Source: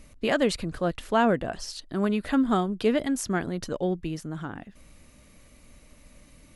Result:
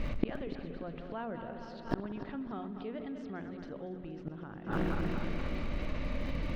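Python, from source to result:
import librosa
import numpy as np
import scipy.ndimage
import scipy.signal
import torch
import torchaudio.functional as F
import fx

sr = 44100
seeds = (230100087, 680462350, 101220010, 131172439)

p1 = fx.reverse_delay_fb(x, sr, ms=118, feedback_pct=72, wet_db=-11.5)
p2 = fx.hum_notches(p1, sr, base_hz=60, count=7)
p3 = fx.gate_flip(p2, sr, shuts_db=-26.0, range_db=-40)
p4 = scipy.signal.sosfilt(scipy.signal.butter(4, 4200.0, 'lowpass', fs=sr, output='sos'), p3)
p5 = fx.high_shelf(p4, sr, hz=2500.0, db=-8.0)
p6 = p5 + fx.echo_feedback(p5, sr, ms=288, feedback_pct=41, wet_db=-21.5, dry=0)
p7 = fx.rev_spring(p6, sr, rt60_s=2.7, pass_ms=(59,), chirp_ms=50, drr_db=17.5)
p8 = fx.schmitt(p7, sr, flips_db=-48.0)
p9 = p7 + (p8 * 10.0 ** (-12.0 / 20.0))
p10 = fx.env_flatten(p9, sr, amount_pct=50)
y = p10 * 10.0 ** (11.0 / 20.0)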